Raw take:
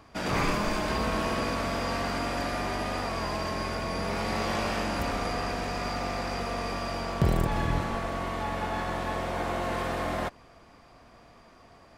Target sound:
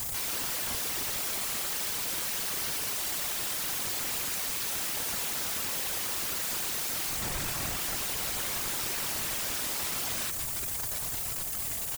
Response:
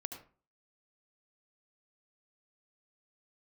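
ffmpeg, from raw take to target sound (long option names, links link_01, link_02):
-af "firequalizer=gain_entry='entry(100,0);entry(150,-10);entry(220,-16);entry(430,-15);entry(1900,-16);entry(5100,-6);entry(7500,-17);entry(11000,-24)':delay=0.05:min_phase=1,acrusher=bits=3:mode=log:mix=0:aa=0.000001,aecho=1:1:4.5:0.61,areverse,acompressor=threshold=-42dB:ratio=16,areverse,aexciter=amount=6.6:drive=8.2:freq=7600,asoftclip=type=tanh:threshold=-38.5dB,highshelf=frequency=5300:width_type=q:width=3:gain=7.5,aeval=exprs='0.0376*sin(PI/2*7.94*val(0)/0.0376)':channel_layout=same,afftfilt=real='hypot(re,im)*cos(2*PI*random(0))':imag='hypot(re,im)*sin(2*PI*random(1))':win_size=512:overlap=0.75,volume=5dB"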